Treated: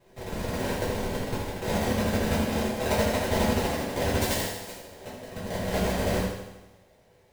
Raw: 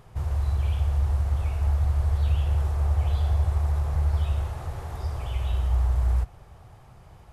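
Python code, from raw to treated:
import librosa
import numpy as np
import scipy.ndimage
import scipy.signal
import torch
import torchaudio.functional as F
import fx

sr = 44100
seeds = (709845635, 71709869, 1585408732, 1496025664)

y = fx.cheby_harmonics(x, sr, harmonics=(3, 7), levels_db=(-9, -40), full_scale_db=-14.0)
y = fx.rider(y, sr, range_db=10, speed_s=2.0)
y = fx.filter_sweep_bandpass(y, sr, from_hz=1600.0, to_hz=630.0, start_s=1.19, end_s=2.06, q=1.1)
y = fx.sample_hold(y, sr, seeds[0], rate_hz=1300.0, jitter_pct=20)
y = fx.high_shelf(y, sr, hz=2700.0, db=12.0, at=(4.2, 4.75))
y = fx.echo_feedback(y, sr, ms=79, feedback_pct=58, wet_db=-8.0)
y = fx.rev_double_slope(y, sr, seeds[1], early_s=0.57, late_s=1.8, knee_db=-23, drr_db=-9.5)
y = F.gain(torch.from_numpy(y), 6.0).numpy()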